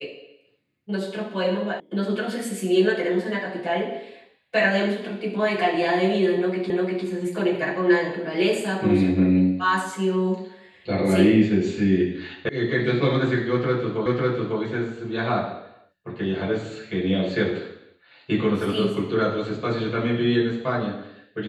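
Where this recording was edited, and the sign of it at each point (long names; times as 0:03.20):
0:01.80: cut off before it has died away
0:06.70: the same again, the last 0.35 s
0:12.49: cut off before it has died away
0:14.06: the same again, the last 0.55 s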